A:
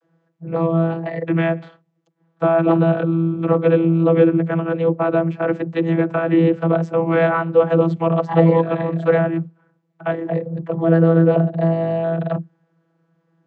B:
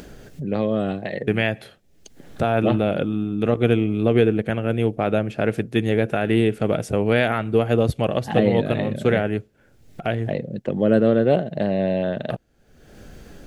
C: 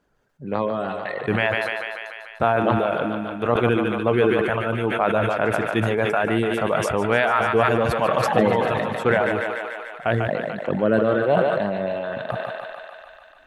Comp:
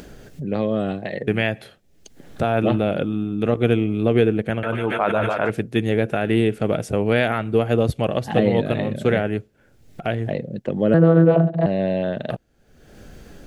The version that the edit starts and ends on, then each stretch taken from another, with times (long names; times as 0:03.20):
B
0:04.63–0:05.50: punch in from C
0:10.94–0:11.66: punch in from A